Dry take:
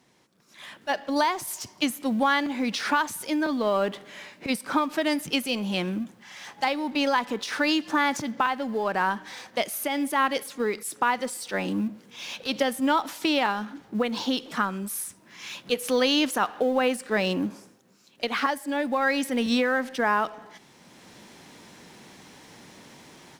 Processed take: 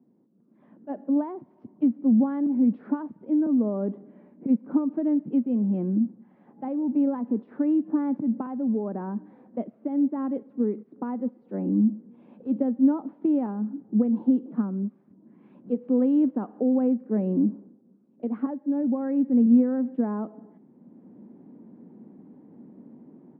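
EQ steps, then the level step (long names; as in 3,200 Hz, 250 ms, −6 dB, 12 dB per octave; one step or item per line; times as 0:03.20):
four-pole ladder band-pass 270 Hz, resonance 50%
high-frequency loss of the air 250 metres
spectral tilt −2 dB per octave
+9.0 dB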